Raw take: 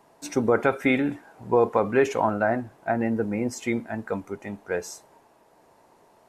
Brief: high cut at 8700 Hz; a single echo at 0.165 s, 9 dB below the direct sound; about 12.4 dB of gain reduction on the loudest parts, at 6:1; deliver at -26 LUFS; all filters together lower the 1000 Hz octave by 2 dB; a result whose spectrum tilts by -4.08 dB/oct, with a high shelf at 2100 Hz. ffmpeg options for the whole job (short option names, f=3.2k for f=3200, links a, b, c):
-af "lowpass=8.7k,equalizer=f=1k:t=o:g=-4.5,highshelf=f=2.1k:g=8,acompressor=threshold=-29dB:ratio=6,aecho=1:1:165:0.355,volume=7.5dB"